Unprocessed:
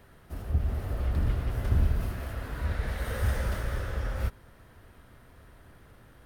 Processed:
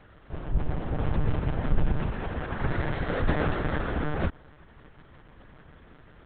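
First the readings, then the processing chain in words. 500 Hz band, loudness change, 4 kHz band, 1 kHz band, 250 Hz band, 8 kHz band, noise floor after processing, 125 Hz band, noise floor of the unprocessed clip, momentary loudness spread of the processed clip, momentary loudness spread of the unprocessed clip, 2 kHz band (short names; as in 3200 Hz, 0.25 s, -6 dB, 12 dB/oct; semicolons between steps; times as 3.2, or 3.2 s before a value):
+7.0 dB, +1.5 dB, +2.5 dB, +7.5 dB, +8.0 dB, under -30 dB, -54 dBFS, 0.0 dB, -56 dBFS, 6 LU, 8 LU, +5.0 dB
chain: monotone LPC vocoder at 8 kHz 150 Hz; dynamic EQ 670 Hz, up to +5 dB, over -48 dBFS, Q 0.86; gain +2 dB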